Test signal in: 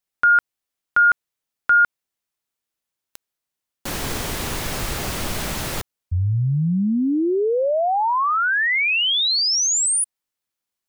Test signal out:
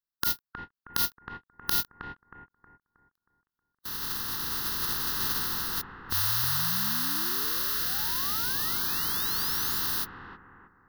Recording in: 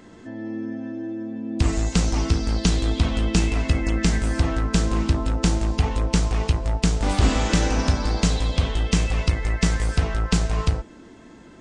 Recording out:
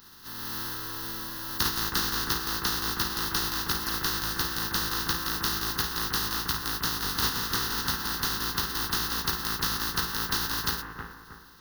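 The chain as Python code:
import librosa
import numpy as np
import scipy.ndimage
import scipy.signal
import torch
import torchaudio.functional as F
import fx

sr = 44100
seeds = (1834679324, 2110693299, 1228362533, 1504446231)

p1 = fx.spec_flatten(x, sr, power=0.12)
p2 = fx.peak_eq(p1, sr, hz=3200.0, db=-6.0, octaves=0.35)
p3 = fx.rider(p2, sr, range_db=4, speed_s=2.0)
p4 = fx.fixed_phaser(p3, sr, hz=2300.0, stages=6)
p5 = p4 + fx.echo_bbd(p4, sr, ms=316, stages=4096, feedback_pct=38, wet_db=-5.5, dry=0)
p6 = fx.end_taper(p5, sr, db_per_s=550.0)
y = p6 * 10.0 ** (-5.0 / 20.0)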